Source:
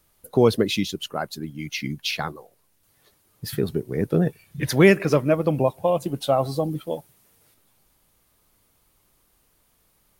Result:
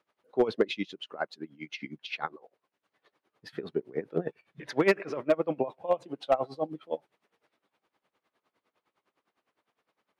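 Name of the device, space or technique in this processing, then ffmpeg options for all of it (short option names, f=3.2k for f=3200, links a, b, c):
helicopter radio: -af "highpass=330,lowpass=2.6k,aeval=exprs='val(0)*pow(10,-19*(0.5-0.5*cos(2*PI*9.8*n/s))/20)':c=same,asoftclip=type=hard:threshold=-14.5dB"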